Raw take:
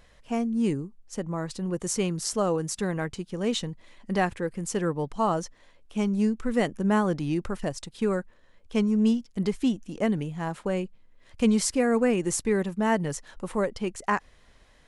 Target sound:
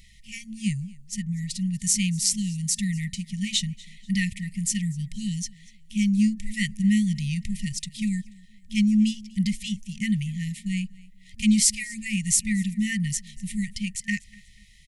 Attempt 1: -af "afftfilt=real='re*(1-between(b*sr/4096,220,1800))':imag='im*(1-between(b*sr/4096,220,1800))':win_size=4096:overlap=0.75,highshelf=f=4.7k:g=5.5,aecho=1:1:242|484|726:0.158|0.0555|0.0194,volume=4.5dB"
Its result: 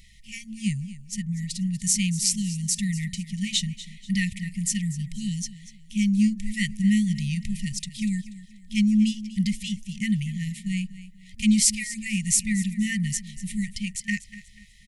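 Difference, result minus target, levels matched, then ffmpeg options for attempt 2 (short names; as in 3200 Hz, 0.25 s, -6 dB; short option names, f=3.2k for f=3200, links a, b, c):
echo-to-direct +7.5 dB
-af "afftfilt=real='re*(1-between(b*sr/4096,220,1800))':imag='im*(1-between(b*sr/4096,220,1800))':win_size=4096:overlap=0.75,highshelf=f=4.7k:g=5.5,aecho=1:1:242|484:0.0668|0.0234,volume=4.5dB"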